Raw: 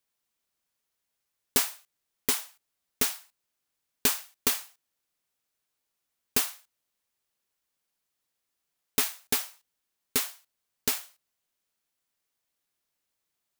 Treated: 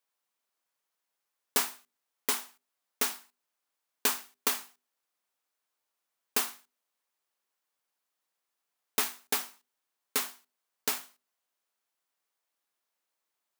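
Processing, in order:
high-pass filter 220 Hz 12 dB per octave
parametric band 990 Hz +6 dB 1.7 octaves
mains-hum notches 50/100/150/200/250/300/350/400 Hz
level −3.5 dB

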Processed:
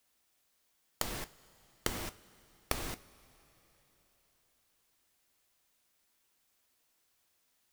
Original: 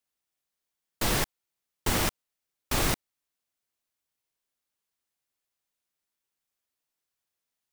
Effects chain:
gate with flip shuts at −27 dBFS, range −25 dB
coupled-rooms reverb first 0.27 s, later 4.1 s, from −19 dB, DRR 12 dB
level +10.5 dB

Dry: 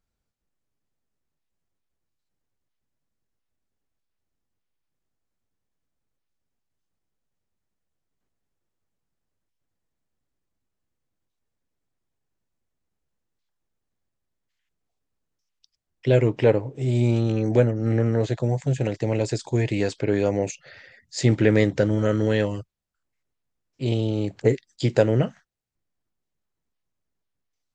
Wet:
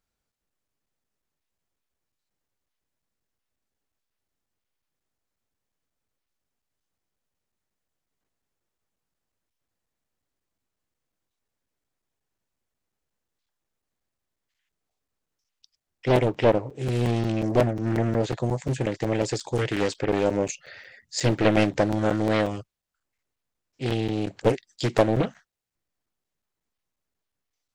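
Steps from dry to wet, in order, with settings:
low-shelf EQ 300 Hz −7.5 dB
in parallel at −10 dB: gain into a clipping stage and back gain 19 dB
on the sum: regular buffer underruns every 0.18 s, samples 256, zero, from 0:00.32
highs frequency-modulated by the lows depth 0.97 ms

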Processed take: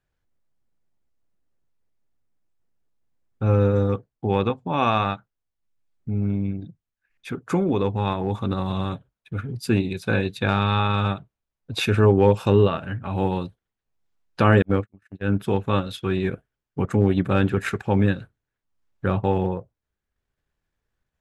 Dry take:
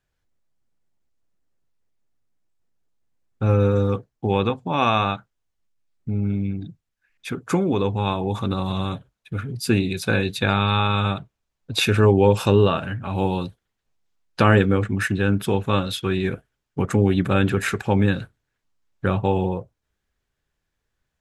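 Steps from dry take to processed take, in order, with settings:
0:14.62–0:15.35: noise gate −18 dBFS, range −47 dB
high-shelf EQ 2,900 Hz −6.5 dB
transient designer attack −2 dB, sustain −6 dB

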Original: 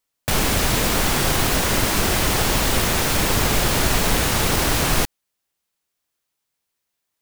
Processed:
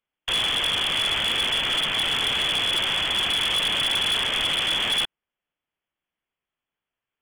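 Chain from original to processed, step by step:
voice inversion scrambler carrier 3,400 Hz
hard clipping −16.5 dBFS, distortion −11 dB
level −3 dB

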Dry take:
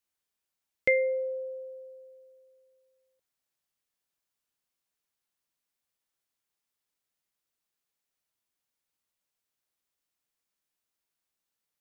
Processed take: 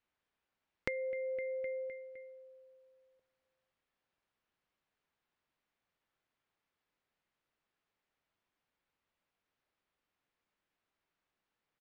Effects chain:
low-pass filter 2,500 Hz
repeating echo 256 ms, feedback 50%, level −14 dB
downward compressor 16 to 1, threshold −41 dBFS, peak gain reduction 21.5 dB
level +6 dB

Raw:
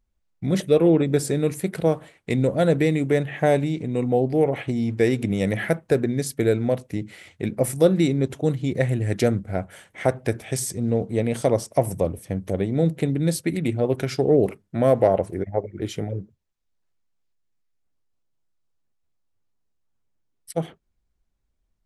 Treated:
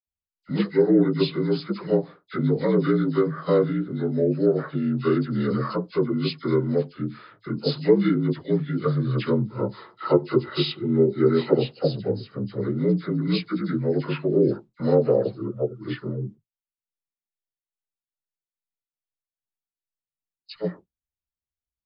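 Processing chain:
partials spread apart or drawn together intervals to 78%
noise gate with hold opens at −38 dBFS
0:09.44–0:11.48: hollow resonant body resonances 360/870/1,300/2,000 Hz, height 12 dB
all-pass dispersion lows, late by 70 ms, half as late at 1,600 Hz

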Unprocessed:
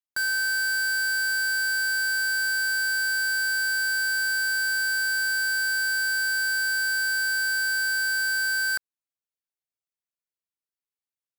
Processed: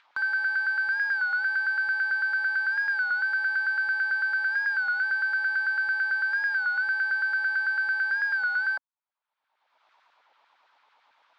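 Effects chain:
loudspeaker in its box 200–3,400 Hz, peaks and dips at 270 Hz +10 dB, 590 Hz +4 dB, 910 Hz +7 dB, 1,900 Hz −4 dB, 2,800 Hz −5 dB
auto-filter high-pass saw down 9 Hz 680–1,600 Hz
upward compression, threshold −30 dBFS
wow of a warped record 33 1/3 rpm, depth 100 cents
level −4.5 dB

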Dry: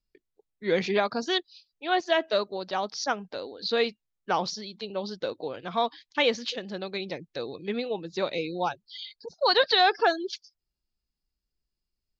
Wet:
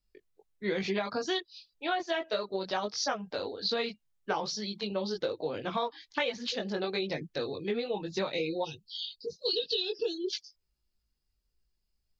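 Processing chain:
multi-voice chorus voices 4, 0.6 Hz, delay 20 ms, depth 1.3 ms
gain on a spectral selection 0:08.64–0:10.31, 500–2,500 Hz −29 dB
downward compressor 12 to 1, threshold −33 dBFS, peak gain reduction 14 dB
level +5.5 dB

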